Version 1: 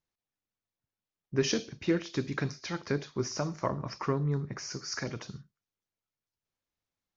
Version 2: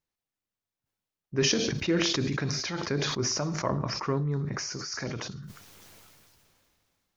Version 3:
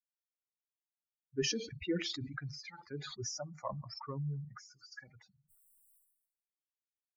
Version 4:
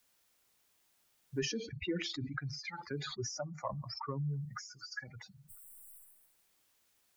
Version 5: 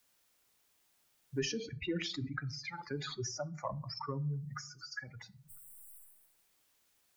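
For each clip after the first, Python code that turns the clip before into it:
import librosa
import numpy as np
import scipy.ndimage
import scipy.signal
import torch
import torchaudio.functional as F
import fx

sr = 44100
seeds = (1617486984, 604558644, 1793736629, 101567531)

y1 = fx.sustainer(x, sr, db_per_s=23.0)
y2 = fx.bin_expand(y1, sr, power=3.0)
y2 = F.gain(torch.from_numpy(y2), -5.0).numpy()
y3 = fx.band_squash(y2, sr, depth_pct=70)
y3 = F.gain(torch.from_numpy(y3), 2.0).numpy()
y4 = fx.room_shoebox(y3, sr, seeds[0], volume_m3=390.0, walls='furnished', distance_m=0.31)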